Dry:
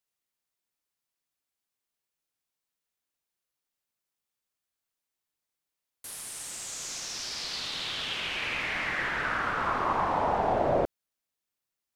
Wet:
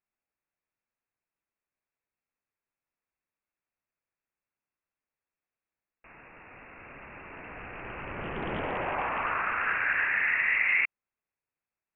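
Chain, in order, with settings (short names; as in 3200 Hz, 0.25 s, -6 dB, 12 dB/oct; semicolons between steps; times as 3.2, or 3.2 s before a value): inverted band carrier 2700 Hz; Doppler distortion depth 0.32 ms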